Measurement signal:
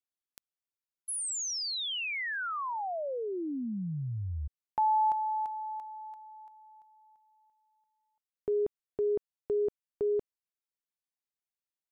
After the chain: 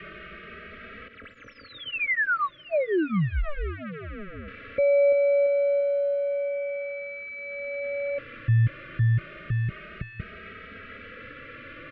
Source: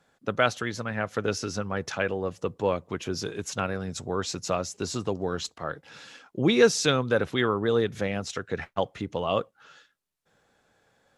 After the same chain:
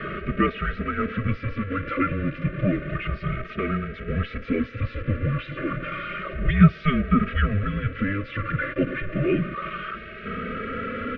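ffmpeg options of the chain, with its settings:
ffmpeg -i in.wav -filter_complex "[0:a]aeval=exprs='val(0)+0.5*0.0631*sgn(val(0))':channel_layout=same,highpass=frequency=290:width_type=q:width=0.5412,highpass=frequency=290:width_type=q:width=1.307,lowpass=frequency=2700:width_type=q:width=0.5176,lowpass=frequency=2700:width_type=q:width=0.7071,lowpass=frequency=2700:width_type=q:width=1.932,afreqshift=-300,asuperstop=centerf=860:order=20:qfactor=1.8,asplit=2[link_01][link_02];[link_02]adelay=2.8,afreqshift=0.31[link_03];[link_01][link_03]amix=inputs=2:normalize=1,volume=5dB" out.wav

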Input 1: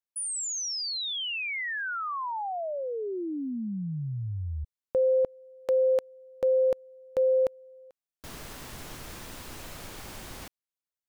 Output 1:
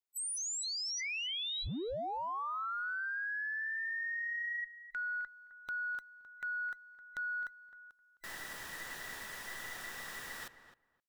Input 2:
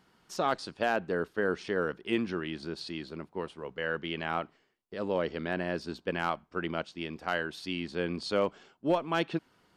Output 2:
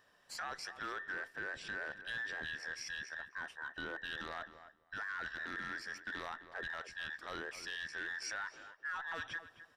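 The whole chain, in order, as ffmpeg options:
ffmpeg -i in.wav -filter_complex "[0:a]afftfilt=real='real(if(between(b,1,1012),(2*floor((b-1)/92)+1)*92-b,b),0)':imag='imag(if(between(b,1,1012),(2*floor((b-1)/92)+1)*92-b,b),0)*if(between(b,1,1012),-1,1)':win_size=2048:overlap=0.75,acompressor=threshold=-32dB:ratio=12:attack=0.25:release=20:knee=1:detection=peak,asplit=2[link_01][link_02];[link_02]adelay=261,lowpass=frequency=2000:poles=1,volume=-11.5dB,asplit=2[link_03][link_04];[link_04]adelay=261,lowpass=frequency=2000:poles=1,volume=0.16[link_05];[link_01][link_03][link_05]amix=inputs=3:normalize=0,volume=-3.5dB" out.wav

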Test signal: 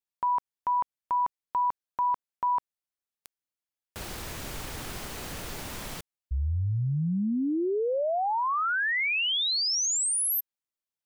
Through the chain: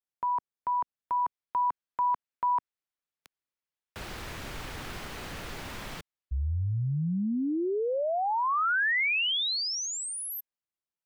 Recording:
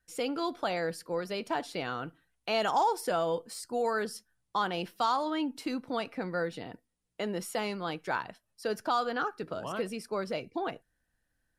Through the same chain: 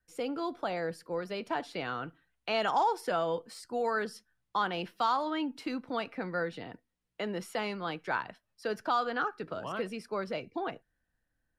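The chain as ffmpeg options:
ffmpeg -i in.wav -filter_complex "[0:a]highshelf=frequency=2500:gain=-8,acrossover=split=220|1200|5400[link_01][link_02][link_03][link_04];[link_03]dynaudnorm=framelen=530:gausssize=5:maxgain=6dB[link_05];[link_01][link_02][link_05][link_04]amix=inputs=4:normalize=0,volume=-1.5dB" out.wav

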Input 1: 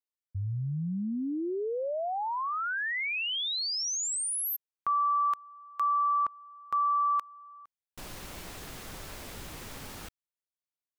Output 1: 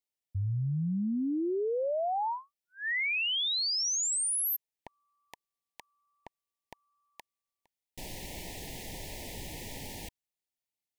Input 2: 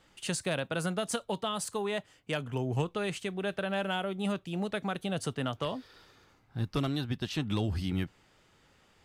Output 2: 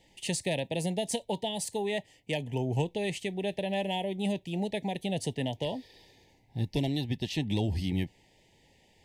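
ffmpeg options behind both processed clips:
ffmpeg -i in.wav -af "asuperstop=centerf=1300:order=12:qfactor=1.6,volume=1.5dB" out.wav

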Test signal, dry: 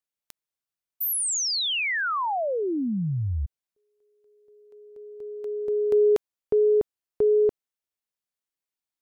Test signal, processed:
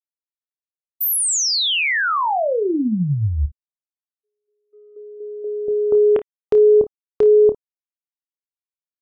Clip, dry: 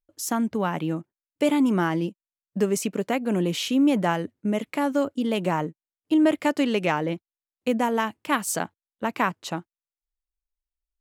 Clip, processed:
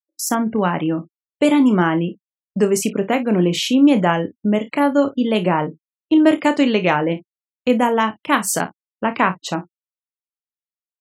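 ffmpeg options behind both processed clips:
ffmpeg -i in.wav -af "afftfilt=real='re*gte(hypot(re,im),0.01)':imag='im*gte(hypot(re,im),0.01)':win_size=1024:overlap=0.75,agate=range=-22dB:threshold=-49dB:ratio=16:release=200:detection=peak,aecho=1:1:28|54:0.316|0.141,volume=6.5dB" out.wav

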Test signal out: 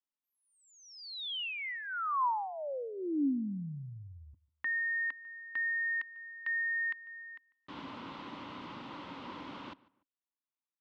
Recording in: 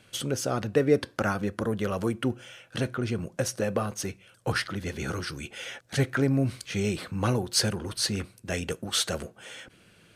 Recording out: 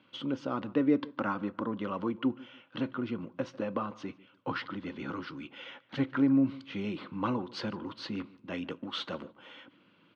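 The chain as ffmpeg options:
ffmpeg -i in.wav -filter_complex "[0:a]highpass=220,equalizer=frequency=280:width_type=q:width=4:gain=8,equalizer=frequency=420:width_type=q:width=4:gain=-9,equalizer=frequency=700:width_type=q:width=4:gain=-9,equalizer=frequency=1000:width_type=q:width=4:gain=7,equalizer=frequency=1700:width_type=q:width=4:gain=-9,equalizer=frequency=2400:width_type=q:width=4:gain=-5,lowpass=frequency=3200:width=0.5412,lowpass=frequency=3200:width=1.3066,asplit=2[link_01][link_02];[link_02]adelay=147,lowpass=frequency=2500:poles=1,volume=-20.5dB,asplit=2[link_03][link_04];[link_04]adelay=147,lowpass=frequency=2500:poles=1,volume=0.3[link_05];[link_01][link_03][link_05]amix=inputs=3:normalize=0,volume=-2.5dB" out.wav

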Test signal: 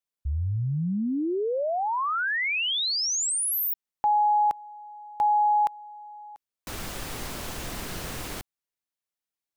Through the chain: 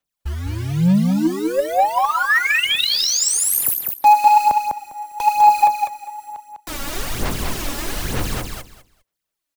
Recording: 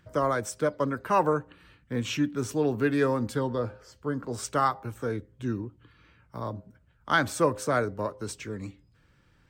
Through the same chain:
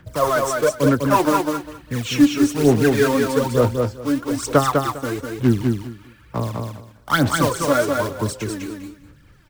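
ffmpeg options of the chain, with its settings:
ffmpeg -i in.wav -filter_complex "[0:a]acrossover=split=170|950|2200[link_01][link_02][link_03][link_04];[link_03]asoftclip=type=tanh:threshold=-27dB[link_05];[link_01][link_02][link_05][link_04]amix=inputs=4:normalize=0,acrusher=bits=3:mode=log:mix=0:aa=0.000001,aphaser=in_gain=1:out_gain=1:delay=3.6:decay=0.71:speed=1.1:type=sinusoidal,aecho=1:1:201|402|603:0.631|0.12|0.0228,volume=4dB" out.wav

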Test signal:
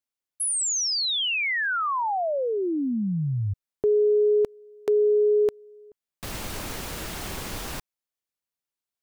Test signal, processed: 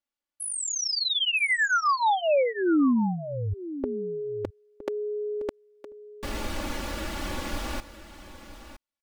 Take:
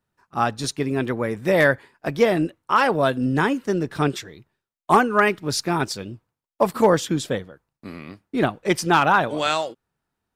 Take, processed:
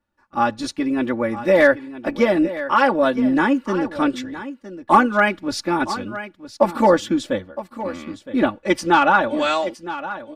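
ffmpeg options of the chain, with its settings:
ffmpeg -i in.wav -af "lowpass=frequency=3200:poles=1,aecho=1:1:3.5:0.92,aecho=1:1:964:0.211" out.wav

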